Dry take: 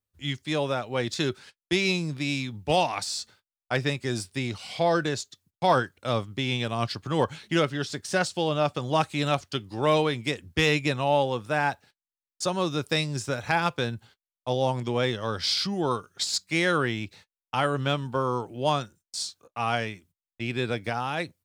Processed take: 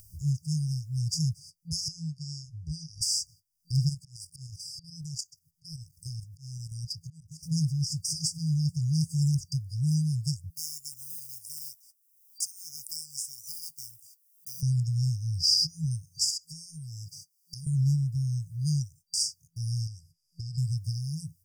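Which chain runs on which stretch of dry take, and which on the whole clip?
1.88–3.01 LPF 4400 Hz + fixed phaser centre 620 Hz, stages 8
3.89–7.43 bell 100 Hz -8 dB 2.1 oct + level quantiser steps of 11 dB + auto swell 0.465 s
10.5–14.63 block floating point 7-bit + differentiator + fixed phaser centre 890 Hz, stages 6
16.3–17.67 HPF 140 Hz 24 dB/oct + comb 2.7 ms, depth 58% + compressor 10:1, threshold -34 dBFS
19.87–20.58 bell 4900 Hz +13 dB 0.29 oct + compressor 3:1, threshold -38 dBFS + LPF 11000 Hz
whole clip: FFT band-reject 170–4700 Hz; bell 7100 Hz -3.5 dB 0.29 oct; upward compressor, threshold -40 dBFS; gain +7 dB

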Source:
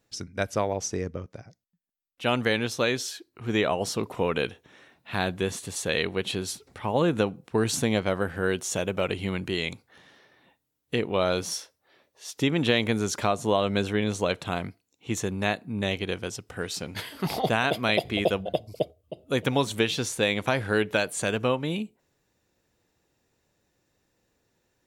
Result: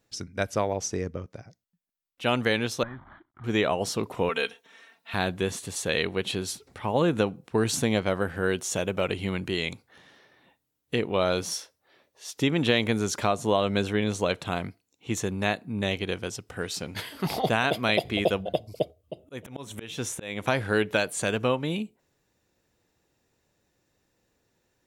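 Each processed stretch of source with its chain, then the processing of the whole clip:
2.83–3.44 CVSD 16 kbps + compressor 4:1, threshold -30 dBFS + fixed phaser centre 1100 Hz, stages 4
4.29–5.14 HPF 830 Hz 6 dB/oct + comb 4.4 ms, depth 86%
19.18–20.43 bell 4500 Hz -11.5 dB 0.3 oct + auto swell 0.287 s
whole clip: dry

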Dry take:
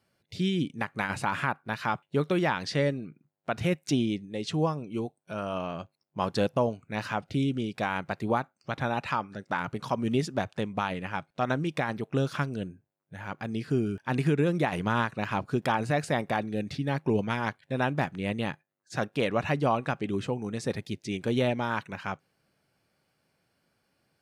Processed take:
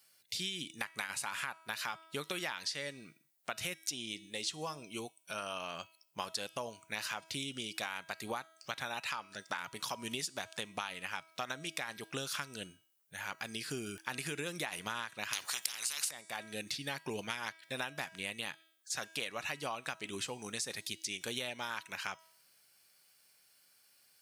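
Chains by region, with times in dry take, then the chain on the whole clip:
15.33–16.11 HPF 58 Hz + band shelf 1200 Hz +11 dB + spectral compressor 10:1
whole clip: pre-emphasis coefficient 0.97; de-hum 323.4 Hz, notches 33; compressor, threshold -50 dBFS; gain +14.5 dB

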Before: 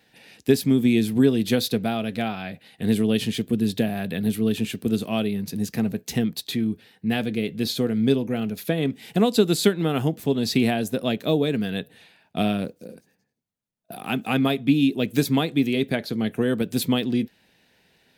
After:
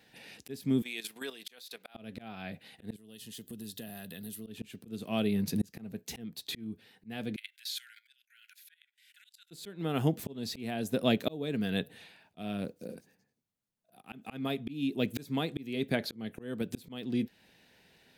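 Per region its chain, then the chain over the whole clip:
0.82–1.95 HPF 990 Hz + level quantiser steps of 12 dB
2.96–4.47 Butterworth band-stop 2300 Hz, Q 6.8 + pre-emphasis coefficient 0.8 + compressor 3:1, threshold -39 dBFS
7.36–9.51 Chebyshev high-pass 1400 Hz, order 10 + level quantiser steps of 18 dB
whole clip: de-esser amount 50%; auto swell 0.582 s; gain -1.5 dB

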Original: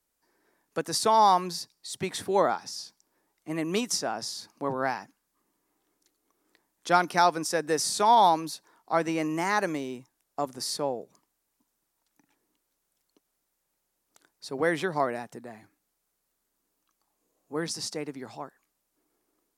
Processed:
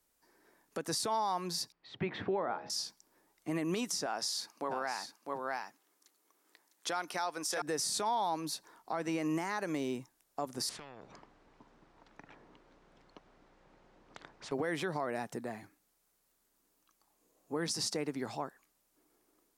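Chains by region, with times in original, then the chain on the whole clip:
1.72–2.7 LPF 2700 Hz 24 dB/oct + de-hum 69.24 Hz, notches 12
4.06–7.62 HPF 630 Hz 6 dB/oct + echo 0.654 s -7 dB
10.69–14.52 tape spacing loss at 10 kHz 38 dB + compressor 5:1, threshold -40 dBFS + spectral compressor 4:1
whole clip: compressor 3:1, threshold -33 dBFS; limiter -27.5 dBFS; gain +2.5 dB

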